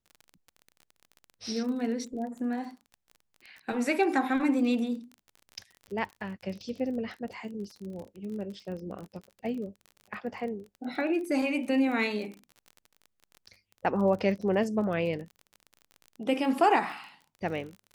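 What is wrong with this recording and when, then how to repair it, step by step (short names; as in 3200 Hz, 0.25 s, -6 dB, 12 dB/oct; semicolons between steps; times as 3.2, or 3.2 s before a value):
crackle 33/s -38 dBFS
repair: de-click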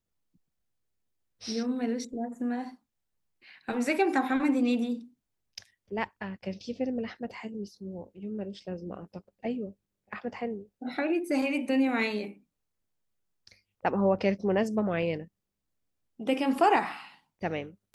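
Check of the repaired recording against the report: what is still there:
none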